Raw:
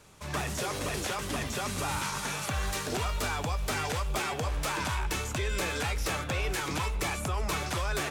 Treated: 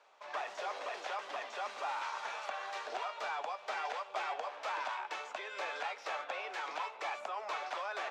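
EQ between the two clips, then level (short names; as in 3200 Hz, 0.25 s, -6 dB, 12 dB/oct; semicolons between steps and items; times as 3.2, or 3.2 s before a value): ladder high-pass 560 Hz, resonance 40%; air absorption 180 m; +2.5 dB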